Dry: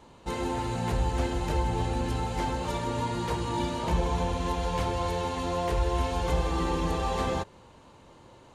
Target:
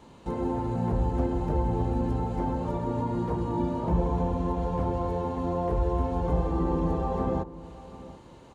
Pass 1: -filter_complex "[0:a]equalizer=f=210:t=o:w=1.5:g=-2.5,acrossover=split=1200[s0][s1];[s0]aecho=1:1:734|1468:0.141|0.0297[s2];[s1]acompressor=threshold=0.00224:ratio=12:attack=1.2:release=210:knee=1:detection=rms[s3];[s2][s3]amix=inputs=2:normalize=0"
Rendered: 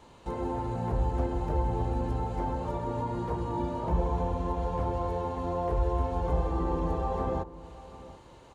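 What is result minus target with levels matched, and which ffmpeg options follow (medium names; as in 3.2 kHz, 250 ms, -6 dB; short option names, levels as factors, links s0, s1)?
250 Hz band -3.0 dB
-filter_complex "[0:a]equalizer=f=210:t=o:w=1.5:g=5,acrossover=split=1200[s0][s1];[s0]aecho=1:1:734|1468:0.141|0.0297[s2];[s1]acompressor=threshold=0.00224:ratio=12:attack=1.2:release=210:knee=1:detection=rms[s3];[s2][s3]amix=inputs=2:normalize=0"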